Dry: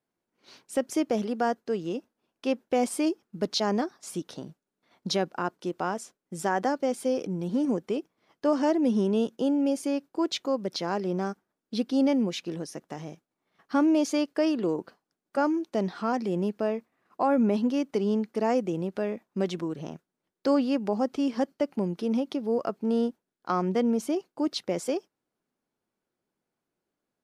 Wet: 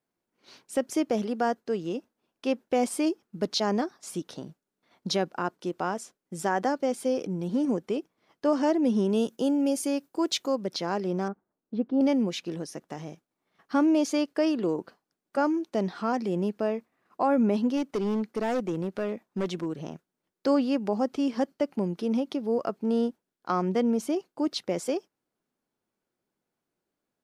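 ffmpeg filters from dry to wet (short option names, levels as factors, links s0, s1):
-filter_complex "[0:a]asettb=1/sr,asplit=3[s0][s1][s2];[s0]atrim=end=9.094[s3];[s1]atrim=start=9.09:end=10.56,asetpts=PTS-STARTPTS,afade=t=in:d=0.004:c=qsin,afade=t=out:st=1.466:d=0.004:c=qsin,highshelf=f=6700:g=11.5[s4];[s2]atrim=start=10.556[s5];[s3][s4]acrossfade=d=0.004:c1=hsin:c2=qsin[s6];[s6][s5]acrossfade=d=0.004:c1=qsin:c2=hsin,asettb=1/sr,asplit=3[s7][s8][s9];[s7]atrim=end=11.284[s10];[s8]atrim=start=11.28:end=12.01,asetpts=PTS-STARTPTS,afade=t=in:d=0.004:c=qsin,afade=t=out:st=0.726:d=0.004:c=qsin,lowpass=1100[s11];[s9]atrim=start=12.006[s12];[s10][s11]acrossfade=d=0.004:c1=hsin:c2=qsin[s13];[s13][s12]acrossfade=d=0.004:c1=qsin:c2=hsin,asplit=3[s14][s15][s16];[s14]afade=t=out:st=17.76:d=0.02[s17];[s15]asoftclip=type=hard:threshold=0.0668,afade=t=in:st=17.76:d=0.02,afade=t=out:st=19.79:d=0.02[s18];[s16]afade=t=in:st=19.79:d=0.02[s19];[s17][s18][s19]amix=inputs=3:normalize=0"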